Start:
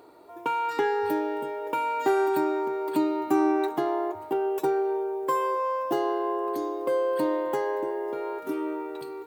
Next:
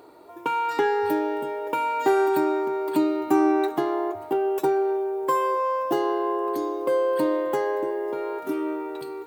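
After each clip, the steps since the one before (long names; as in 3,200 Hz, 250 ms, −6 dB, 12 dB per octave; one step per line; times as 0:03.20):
hum removal 231.4 Hz, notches 38
level +3 dB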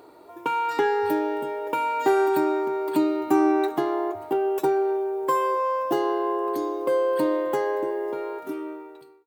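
fade-out on the ending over 1.23 s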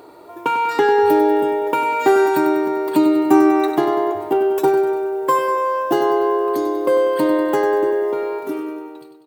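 repeating echo 97 ms, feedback 59%, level −10 dB
level +6.5 dB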